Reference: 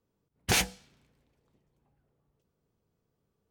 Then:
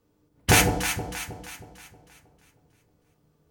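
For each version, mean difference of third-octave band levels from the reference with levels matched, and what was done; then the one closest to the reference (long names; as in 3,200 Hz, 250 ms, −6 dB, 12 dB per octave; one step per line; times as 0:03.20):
10.0 dB: dynamic equaliser 4,400 Hz, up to −7 dB, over −40 dBFS, Q 0.95
in parallel at −7.5 dB: soft clipping −22 dBFS, distortion −15 dB
on the sum: delay that swaps between a low-pass and a high-pass 158 ms, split 830 Hz, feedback 67%, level −5 dB
feedback delay network reverb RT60 0.43 s, low-frequency decay 1.3×, high-frequency decay 0.7×, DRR 5.5 dB
level +6.5 dB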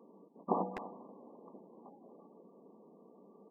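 21.0 dB: gate on every frequency bin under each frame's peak −25 dB strong
linear-phase brick-wall band-pass 180–1,200 Hz
far-end echo of a speakerphone 250 ms, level −23 dB
every bin compressed towards the loudest bin 2 to 1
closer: first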